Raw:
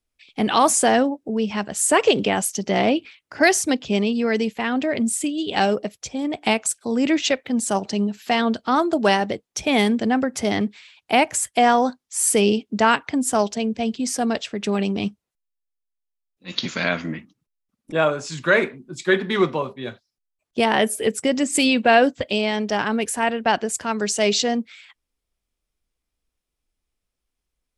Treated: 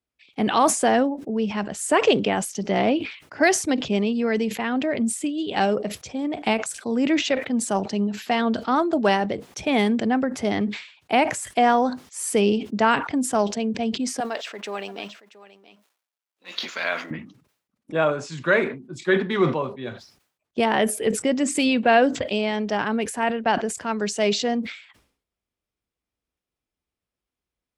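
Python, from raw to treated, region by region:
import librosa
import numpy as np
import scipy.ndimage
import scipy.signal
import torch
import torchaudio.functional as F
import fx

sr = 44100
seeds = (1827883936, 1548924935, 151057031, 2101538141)

y = fx.chain(x, sr, fx.law_mismatch(coded='mu'),
    fx.highpass(hz=590.0, slope=12),
    fx.echo_single(ms=677, db=-17.5), at=(14.2, 17.11))
y = scipy.signal.sosfilt(scipy.signal.butter(2, 75.0, 'highpass', fs=sr, output='sos'), y)
y = fx.high_shelf(y, sr, hz=4100.0, db=-9.0)
y = fx.sustainer(y, sr, db_per_s=110.0)
y = y * librosa.db_to_amplitude(-1.5)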